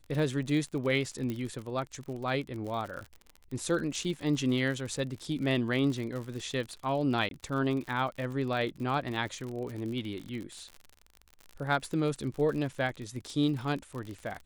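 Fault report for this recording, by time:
crackle 53/s -36 dBFS
1.3 pop -22 dBFS
7.29–7.31 gap 22 ms

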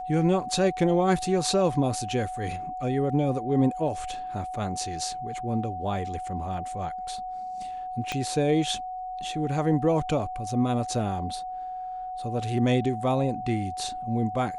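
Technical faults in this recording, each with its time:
tone 740 Hz -32 dBFS
8.12 pop -15 dBFS

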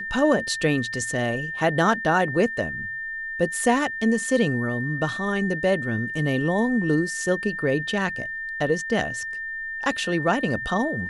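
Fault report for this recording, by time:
tone 1800 Hz -29 dBFS

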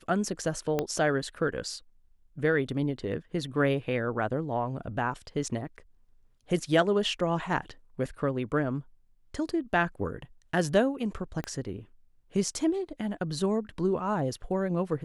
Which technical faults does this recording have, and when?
0.79 pop -14 dBFS
11.44 pop -21 dBFS

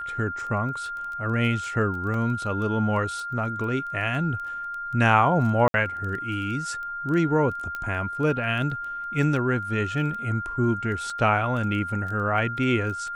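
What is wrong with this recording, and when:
crackle 10/s -32 dBFS
tone 1400 Hz -30 dBFS
2.14 gap 2.2 ms
5.68–5.74 gap 62 ms
7.75 pop -19 dBFS
11.1 gap 3 ms

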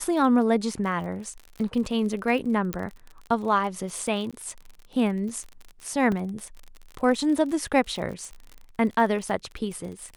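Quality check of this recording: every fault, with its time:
crackle 42/s -33 dBFS
2.73 pop -12 dBFS
4.31–4.33 gap 16 ms
6.12 gap 2.9 ms

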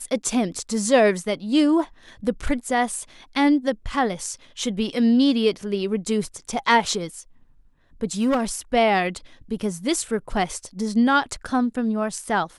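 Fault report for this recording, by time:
8.21–8.52 clipped -16 dBFS

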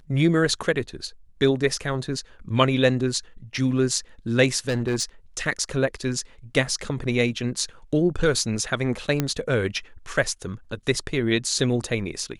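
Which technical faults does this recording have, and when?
4.68–5.04 clipped -19 dBFS
9.2 pop -8 dBFS

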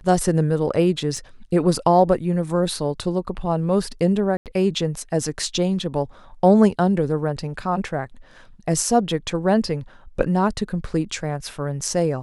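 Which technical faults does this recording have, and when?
1.17 gap 2 ms
4.37–4.46 gap 88 ms

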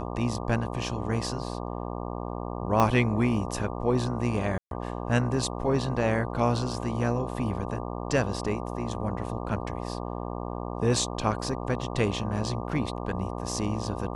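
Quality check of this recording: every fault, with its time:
buzz 60 Hz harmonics 20 -34 dBFS
2.8 pop -10 dBFS
4.58–4.71 gap 0.132 s

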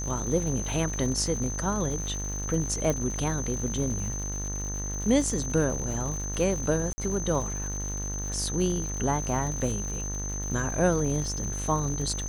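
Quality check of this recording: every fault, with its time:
buzz 50 Hz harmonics 39 -34 dBFS
crackle 190/s -35 dBFS
tone 6200 Hz -34 dBFS
2.9 pop -14 dBFS
6.93–6.98 gap 50 ms

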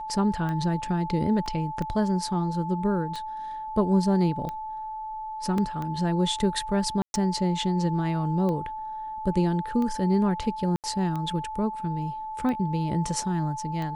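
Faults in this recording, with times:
tick 45 rpm -21 dBFS
tone 870 Hz -32 dBFS
1.46 gap 2.4 ms
5.58 gap 2.4 ms
7.02–7.14 gap 0.121 s
10.76–10.84 gap 78 ms

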